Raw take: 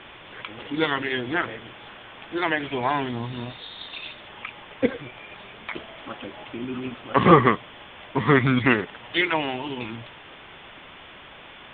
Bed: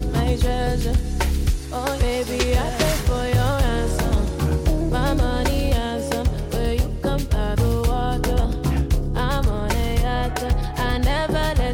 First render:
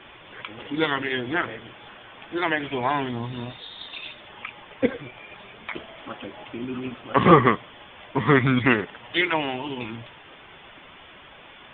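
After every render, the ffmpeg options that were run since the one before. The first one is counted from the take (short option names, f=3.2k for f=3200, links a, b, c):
-af "afftdn=nr=6:nf=-45"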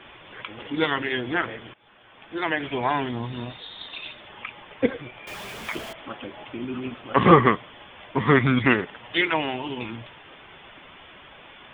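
-filter_complex "[0:a]asettb=1/sr,asplit=3[a][b][c];[a]atrim=end=5.274[d];[b]atrim=start=5.27:end=5.93,asetpts=PTS-STARTPTS,afade=t=in:d=0.004:c=qsin,afade=t=out:st=0.656:d=0.004:c=qsin,aeval=exprs='val(0)+0.5*0.0178*sgn(val(0))':c=same[e];[c]atrim=start=5.926[f];[d][e]acrossfade=d=0.004:c1=hsin:c2=qsin[g];[g][f]acrossfade=d=0.004:c1=qsin:c2=hsin,asplit=2[h][i];[h]atrim=end=1.74,asetpts=PTS-STARTPTS,afade=t=out:st=1.736:d=0.004:c=hsin:silence=0.11885[j];[i]atrim=start=1.74,asetpts=PTS-STARTPTS,afade=t=in:d=0.93:silence=0.11885[k];[j][k]concat=n=2:v=0:a=1"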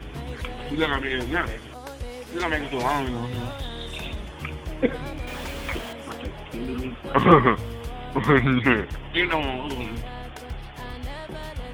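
-filter_complex "[1:a]volume=-14.5dB[a];[0:a][a]amix=inputs=2:normalize=0"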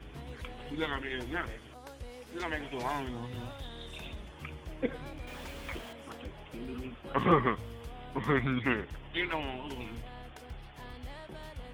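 -af "volume=-10.5dB"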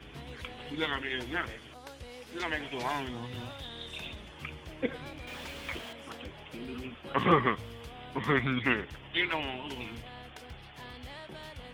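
-af "highpass=66,equalizer=f=3.3k:w=0.65:g=5.5"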